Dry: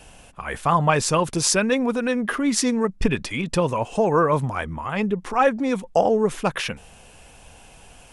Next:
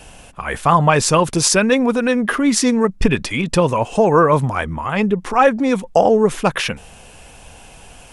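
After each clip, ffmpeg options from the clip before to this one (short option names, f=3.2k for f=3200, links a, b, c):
-af "alimiter=level_in=7dB:limit=-1dB:release=50:level=0:latency=1,volume=-1dB"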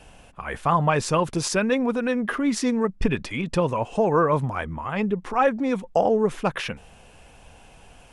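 -af "highshelf=f=4.8k:g=-8.5,volume=-7dB"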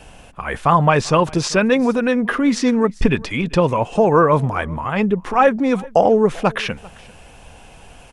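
-filter_complex "[0:a]aecho=1:1:393:0.0668,acrossover=split=7000[a][b];[b]acompressor=threshold=-52dB:ratio=4:attack=1:release=60[c];[a][c]amix=inputs=2:normalize=0,volume=6.5dB"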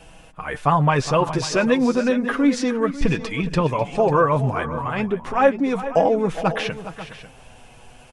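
-filter_complex "[0:a]flanger=delay=6.1:depth=2.1:regen=31:speed=0.32:shape=sinusoidal,asplit=2[a][b];[b]aecho=0:1:414|545:0.211|0.178[c];[a][c]amix=inputs=2:normalize=0"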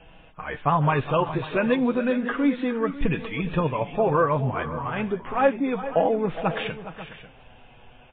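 -af "volume=-3.5dB" -ar 8000 -c:a libmp3lame -b:a 16k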